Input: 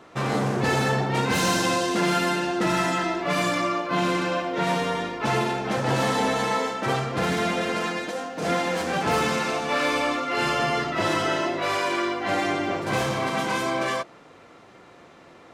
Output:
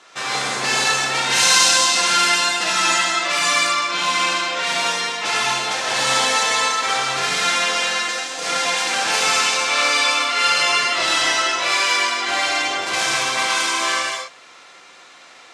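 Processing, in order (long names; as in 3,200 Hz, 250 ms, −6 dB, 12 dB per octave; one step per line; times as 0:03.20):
meter weighting curve ITU-R 468
reverb whose tail is shaped and stops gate 280 ms flat, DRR −3 dB
level −1 dB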